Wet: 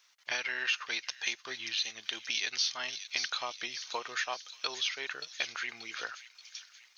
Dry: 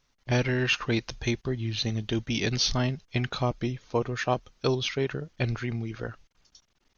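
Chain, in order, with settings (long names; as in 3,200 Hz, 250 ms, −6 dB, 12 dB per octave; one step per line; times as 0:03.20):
high-pass filter 1,400 Hz 12 dB per octave
downward compressor 2.5 to 1, threshold −43 dBFS, peak gain reduction 14.5 dB
delay with a high-pass on its return 581 ms, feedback 50%, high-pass 4,400 Hz, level −3.5 dB
level +8.5 dB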